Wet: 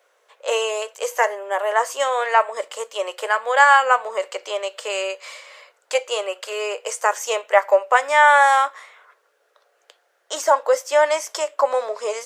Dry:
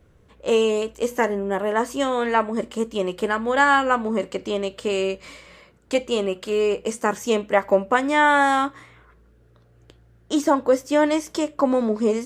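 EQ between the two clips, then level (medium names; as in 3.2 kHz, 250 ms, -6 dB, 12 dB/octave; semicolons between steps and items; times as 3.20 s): steep high-pass 530 Hz 36 dB/octave; peaking EQ 6.2 kHz +2.5 dB; dynamic bell 3.7 kHz, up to -5 dB, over -44 dBFS, Q 2.9; +4.5 dB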